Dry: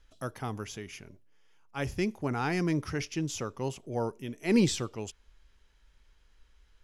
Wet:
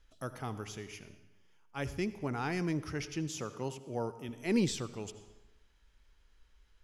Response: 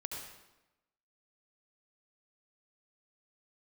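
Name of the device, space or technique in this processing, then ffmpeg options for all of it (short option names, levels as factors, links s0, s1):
compressed reverb return: -filter_complex "[0:a]asplit=2[s0][s1];[1:a]atrim=start_sample=2205[s2];[s1][s2]afir=irnorm=-1:irlink=0,acompressor=threshold=0.02:ratio=6,volume=0.562[s3];[s0][s3]amix=inputs=2:normalize=0,asettb=1/sr,asplit=3[s4][s5][s6];[s4]atrim=end=3.284[s7];[s5]atrim=start=3.28:end=4.29,asetpts=PTS-STARTPTS,afade=t=in:d=0.004:c=qsin,afade=t=out:st=1.006:d=0.004:c=qsin,highpass=92[s8];[s6]atrim=start=4.286[s9];[s7][s8]acrossfade=d=0.004:c1=hsin:c2=qsin[s10];[s10][s9]acrossfade=d=0.004:c1=qsin:c2=hsin,volume=0.501"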